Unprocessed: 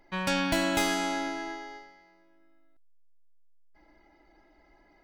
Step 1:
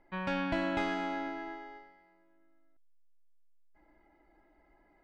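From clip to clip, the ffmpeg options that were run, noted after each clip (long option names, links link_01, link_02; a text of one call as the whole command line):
ffmpeg -i in.wav -af "lowpass=2300,volume=-4.5dB" out.wav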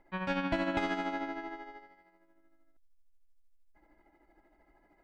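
ffmpeg -i in.wav -af "tremolo=f=13:d=0.52,volume=2.5dB" out.wav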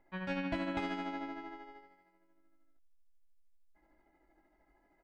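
ffmpeg -i in.wav -filter_complex "[0:a]asplit=2[link_01][link_02];[link_02]adelay=22,volume=-6dB[link_03];[link_01][link_03]amix=inputs=2:normalize=0,volume=-5.5dB" out.wav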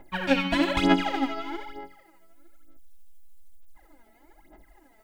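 ffmpeg -i in.wav -af "aexciter=amount=1.5:drive=7.6:freq=2800,aphaser=in_gain=1:out_gain=1:delay=4.6:decay=0.77:speed=1.1:type=sinusoidal,volume=8.5dB" out.wav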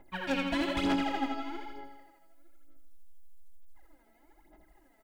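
ffmpeg -i in.wav -af "volume=18dB,asoftclip=hard,volume=-18dB,aecho=1:1:83|166|249|332|415|498:0.376|0.199|0.106|0.056|0.0297|0.0157,volume=-7dB" out.wav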